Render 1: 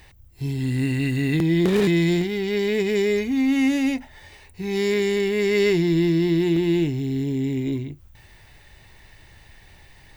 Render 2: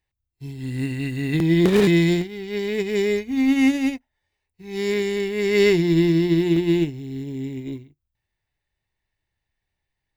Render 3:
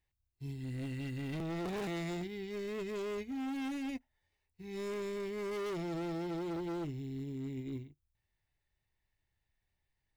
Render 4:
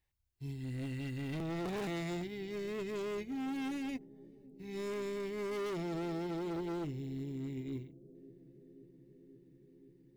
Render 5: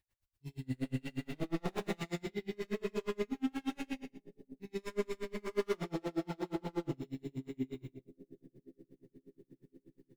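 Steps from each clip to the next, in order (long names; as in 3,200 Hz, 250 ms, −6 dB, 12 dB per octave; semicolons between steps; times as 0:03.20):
expander for the loud parts 2.5 to 1, over −41 dBFS; level +4 dB
low-shelf EQ 130 Hz +4 dB; hard clipping −23 dBFS, distortion −5 dB; reversed playback; downward compressor 6 to 1, threshold −33 dBFS, peak gain reduction 8.5 dB; reversed playback; level −5 dB
bucket-brigade delay 528 ms, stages 2,048, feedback 83%, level −21 dB
convolution reverb RT60 0.60 s, pre-delay 27 ms, DRR −1 dB; tremolo with a sine in dB 8.4 Hz, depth 34 dB; level +3 dB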